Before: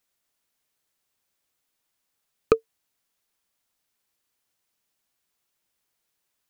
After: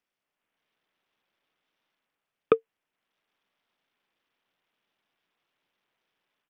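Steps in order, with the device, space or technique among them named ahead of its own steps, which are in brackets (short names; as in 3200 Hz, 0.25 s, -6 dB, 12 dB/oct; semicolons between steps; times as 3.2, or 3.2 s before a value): Bluetooth headset (HPF 160 Hz 12 dB/oct; AGC gain up to 8 dB; downsampling 8000 Hz; gain -3.5 dB; SBC 64 kbps 48000 Hz)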